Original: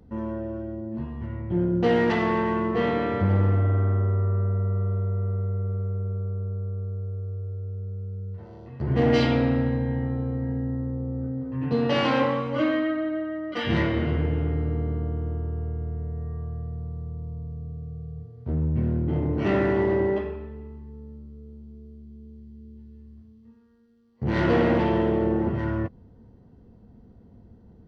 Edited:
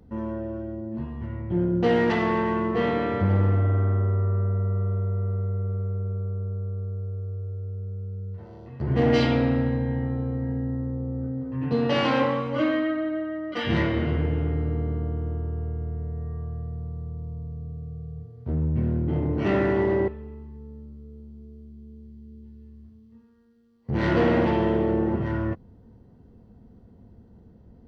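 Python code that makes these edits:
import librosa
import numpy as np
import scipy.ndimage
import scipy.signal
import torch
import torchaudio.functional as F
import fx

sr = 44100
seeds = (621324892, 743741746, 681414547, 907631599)

y = fx.edit(x, sr, fx.cut(start_s=20.08, length_s=0.33), tone=tone)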